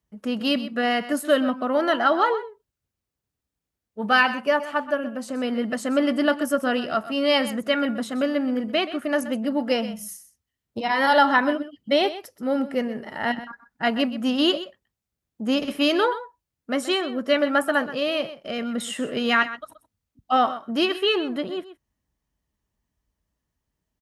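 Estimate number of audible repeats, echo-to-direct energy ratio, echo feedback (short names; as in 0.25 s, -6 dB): 1, -14.0 dB, no steady repeat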